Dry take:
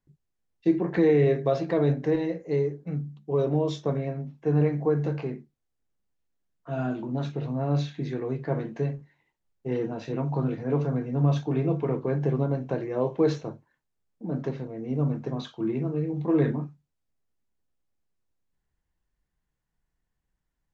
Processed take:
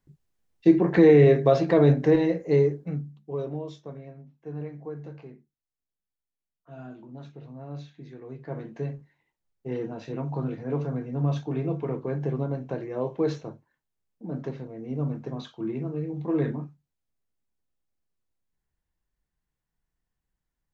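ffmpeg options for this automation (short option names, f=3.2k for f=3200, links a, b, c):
-af "volume=15dB,afade=t=out:st=2.66:d=0.4:silence=0.375837,afade=t=out:st=3.06:d=0.74:silence=0.334965,afade=t=in:st=8.19:d=0.75:silence=0.316228"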